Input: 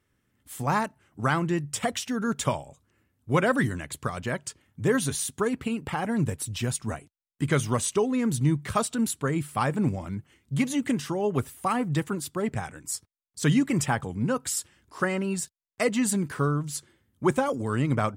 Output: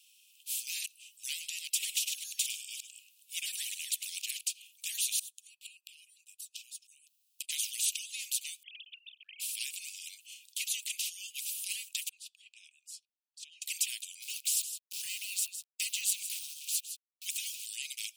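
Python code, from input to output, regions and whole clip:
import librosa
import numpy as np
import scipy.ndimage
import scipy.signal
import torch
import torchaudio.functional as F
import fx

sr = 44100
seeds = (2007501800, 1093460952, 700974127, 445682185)

y = fx.chain(x, sr, fx.reverse_delay(ms=188, wet_db=-10.0),
    fx.echo_single(ms=103, db=-19.0), at=(1.3, 4.41))
y = fx.chain(y, sr, fx.highpass(hz=170.0, slope=12),
    fx.high_shelf(hz=11000.0, db=4.5),
    fx.gate_flip(shuts_db=-27.0, range_db=-30), at=(5.19, 7.49))
y = fx.chain(y, sr, fx.sine_speech(),
    fx.level_steps(step_db=18), at=(8.63, 9.4))
y = fx.chain(y, sr, fx.bandpass_q(hz=180.0, q=1.1),
    fx.over_compress(threshold_db=-29.0, ratio=-1.0), at=(12.09, 13.62))
y = fx.chain(y, sr, fx.sample_gate(floor_db=-46.5),
    fx.echo_single(ms=160, db=-20.0), at=(14.22, 17.66))
y = scipy.signal.sosfilt(scipy.signal.cheby1(8, 1.0, 2500.0, 'highpass', fs=sr, output='sos'), y)
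y = fx.dynamic_eq(y, sr, hz=5100.0, q=3.3, threshold_db=-53.0, ratio=4.0, max_db=-5)
y = fx.spectral_comp(y, sr, ratio=2.0)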